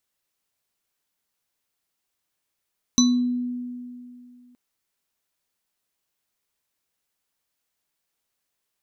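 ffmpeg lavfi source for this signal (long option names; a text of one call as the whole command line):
ffmpeg -f lavfi -i "aevalsrc='0.2*pow(10,-3*t/2.53)*sin(2*PI*246*t)+0.0282*pow(10,-3*t/0.4)*sin(2*PI*1100*t)+0.119*pow(10,-3*t/0.42)*sin(2*PI*3980*t)+0.2*pow(10,-3*t/0.21)*sin(2*PI*6010*t)':duration=1.57:sample_rate=44100" out.wav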